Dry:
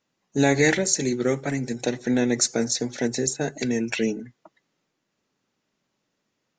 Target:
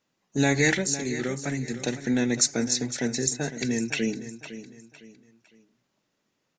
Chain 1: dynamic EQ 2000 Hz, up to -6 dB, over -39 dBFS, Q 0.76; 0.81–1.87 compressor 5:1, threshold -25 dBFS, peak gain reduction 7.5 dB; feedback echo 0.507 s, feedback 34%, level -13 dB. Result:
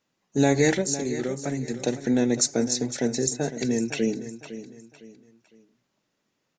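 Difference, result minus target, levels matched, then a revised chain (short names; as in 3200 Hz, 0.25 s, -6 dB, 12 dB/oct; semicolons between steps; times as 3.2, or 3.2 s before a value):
2000 Hz band -5.5 dB
dynamic EQ 550 Hz, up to -6 dB, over -39 dBFS, Q 0.76; 0.81–1.87 compressor 5:1, threshold -25 dBFS, peak gain reduction 8 dB; feedback echo 0.507 s, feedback 34%, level -13 dB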